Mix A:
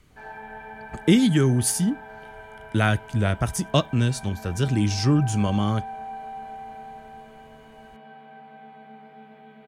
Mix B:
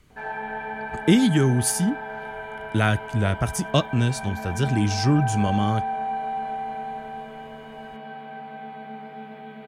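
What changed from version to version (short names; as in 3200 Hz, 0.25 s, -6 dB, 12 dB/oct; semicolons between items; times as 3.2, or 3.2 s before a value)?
background +8.0 dB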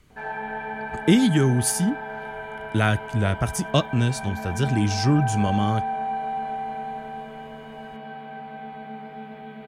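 background: add low shelf 90 Hz +9.5 dB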